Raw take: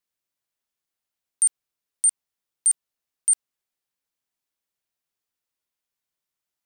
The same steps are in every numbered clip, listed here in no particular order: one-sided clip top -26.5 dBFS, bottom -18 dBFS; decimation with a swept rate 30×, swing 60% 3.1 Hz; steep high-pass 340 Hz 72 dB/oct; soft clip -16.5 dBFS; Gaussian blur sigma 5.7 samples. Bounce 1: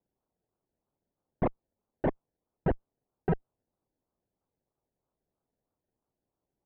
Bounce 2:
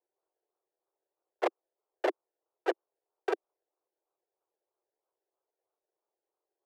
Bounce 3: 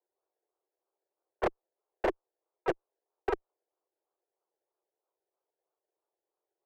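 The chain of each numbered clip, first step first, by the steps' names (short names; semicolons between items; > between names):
steep high-pass > decimation with a swept rate > one-sided clip > Gaussian blur > soft clip; decimation with a swept rate > Gaussian blur > soft clip > one-sided clip > steep high-pass; decimation with a swept rate > Gaussian blur > soft clip > steep high-pass > one-sided clip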